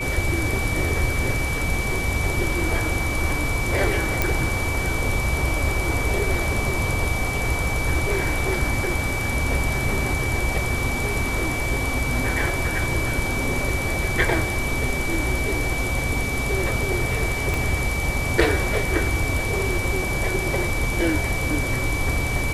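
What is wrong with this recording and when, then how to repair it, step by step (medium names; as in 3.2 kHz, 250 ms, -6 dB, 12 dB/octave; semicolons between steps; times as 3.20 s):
whine 2.3 kHz -27 dBFS
4.22 s: pop
17.54 s: pop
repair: de-click; band-stop 2.3 kHz, Q 30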